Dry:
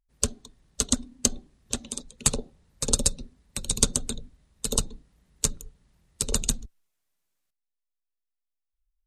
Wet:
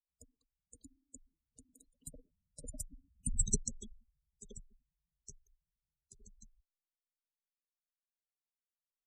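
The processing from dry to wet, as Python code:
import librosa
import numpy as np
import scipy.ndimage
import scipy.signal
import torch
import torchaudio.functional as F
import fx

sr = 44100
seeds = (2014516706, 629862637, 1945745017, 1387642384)

y = fx.doppler_pass(x, sr, speed_mps=29, closest_m=1.5, pass_at_s=3.34)
y = fx.spec_gate(y, sr, threshold_db=-10, keep='strong')
y = F.gain(torch.from_numpy(y), 4.0).numpy()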